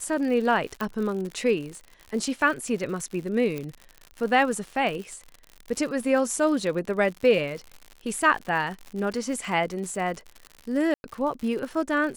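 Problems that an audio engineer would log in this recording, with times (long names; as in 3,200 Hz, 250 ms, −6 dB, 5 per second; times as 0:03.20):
surface crackle 100 per second −33 dBFS
0:00.81: click −16 dBFS
0:03.58: click −19 dBFS
0:10.94–0:11.04: drop-out 101 ms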